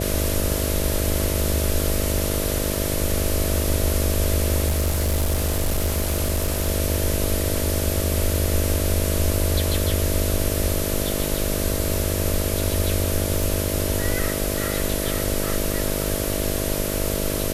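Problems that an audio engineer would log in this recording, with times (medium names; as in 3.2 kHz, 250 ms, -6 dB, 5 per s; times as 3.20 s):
buzz 50 Hz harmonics 13 -27 dBFS
4.67–6.69 s: clipped -17 dBFS
13.43 s: pop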